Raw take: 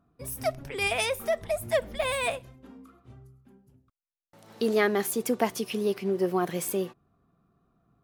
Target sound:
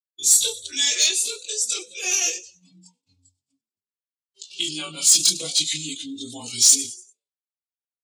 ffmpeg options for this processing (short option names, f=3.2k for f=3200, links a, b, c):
-filter_complex "[0:a]afftfilt=real='re':imag='-im':win_size=2048:overlap=0.75,agate=range=-38dB:threshold=-58dB:ratio=16:detection=peak,highpass=120,lowpass=5.8k,acompressor=threshold=-43dB:ratio=2,aexciter=amount=13.3:drive=6.9:freq=3.8k,aemphasis=mode=production:type=bsi,bandreject=f=50:t=h:w=6,bandreject=f=100:t=h:w=6,bandreject=f=150:t=h:w=6,bandreject=f=200:t=h:w=6,bandreject=f=250:t=h:w=6,asplit=2[a][b];[b]asplit=4[c][d][e][f];[c]adelay=98,afreqshift=63,volume=-17.5dB[g];[d]adelay=196,afreqshift=126,volume=-23.7dB[h];[e]adelay=294,afreqshift=189,volume=-29.9dB[i];[f]adelay=392,afreqshift=252,volume=-36.1dB[j];[g][h][i][j]amix=inputs=4:normalize=0[k];[a][k]amix=inputs=2:normalize=0,afftdn=nr=22:nf=-45,asetrate=31183,aresample=44100,atempo=1.41421,acontrast=75,asplit=2[l][m];[m]adelay=4,afreqshift=-0.34[n];[l][n]amix=inputs=2:normalize=1"